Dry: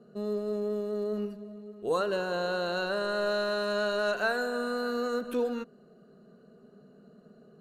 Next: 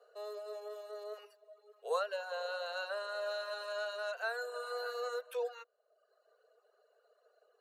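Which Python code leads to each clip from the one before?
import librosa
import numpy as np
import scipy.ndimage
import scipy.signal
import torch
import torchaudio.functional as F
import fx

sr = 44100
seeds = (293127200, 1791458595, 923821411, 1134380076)

y = scipy.signal.sosfilt(scipy.signal.butter(12, 470.0, 'highpass', fs=sr, output='sos'), x)
y = fx.dereverb_blind(y, sr, rt60_s=0.99)
y = fx.rider(y, sr, range_db=4, speed_s=0.5)
y = F.gain(torch.from_numpy(y), -4.5).numpy()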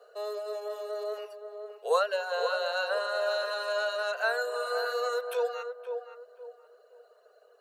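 y = fx.echo_filtered(x, sr, ms=521, feedback_pct=35, hz=960.0, wet_db=-5.5)
y = F.gain(torch.from_numpy(y), 8.5).numpy()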